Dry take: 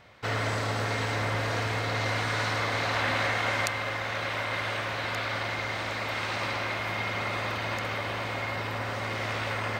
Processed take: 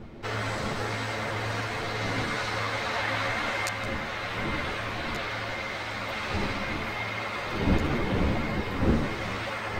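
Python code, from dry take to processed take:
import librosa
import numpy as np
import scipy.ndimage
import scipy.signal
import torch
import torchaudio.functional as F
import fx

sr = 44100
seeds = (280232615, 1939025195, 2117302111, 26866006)

y = fx.dmg_wind(x, sr, seeds[0], corner_hz=300.0, level_db=-32.0)
y = y + 10.0 ** (-15.0 / 20.0) * np.pad(y, (int(167 * sr / 1000.0), 0))[:len(y)]
y = fx.ensemble(y, sr)
y = y * 10.0 ** (1.5 / 20.0)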